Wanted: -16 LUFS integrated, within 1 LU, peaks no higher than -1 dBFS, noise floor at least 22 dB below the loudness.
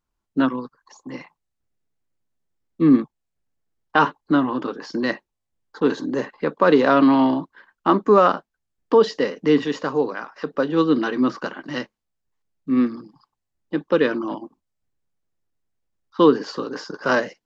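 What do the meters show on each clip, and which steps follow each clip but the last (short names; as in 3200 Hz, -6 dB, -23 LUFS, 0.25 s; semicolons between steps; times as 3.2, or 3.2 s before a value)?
loudness -20.5 LUFS; peak -4.0 dBFS; loudness target -16.0 LUFS
-> gain +4.5 dB; limiter -1 dBFS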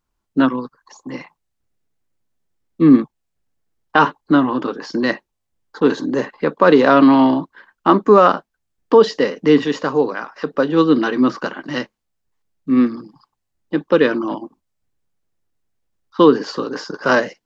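loudness -16.5 LUFS; peak -1.0 dBFS; noise floor -76 dBFS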